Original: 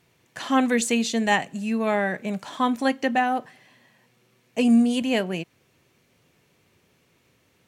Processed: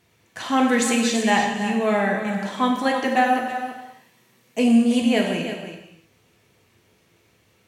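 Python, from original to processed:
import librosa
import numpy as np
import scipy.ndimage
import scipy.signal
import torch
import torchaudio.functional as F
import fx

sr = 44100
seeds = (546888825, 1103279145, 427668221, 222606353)

p1 = fx.high_shelf(x, sr, hz=6800.0, db=7.0, at=(3.05, 4.59))
p2 = p1 + fx.echo_single(p1, sr, ms=327, db=-10.0, dry=0)
y = fx.rev_gated(p2, sr, seeds[0], gate_ms=340, shape='falling', drr_db=0.5)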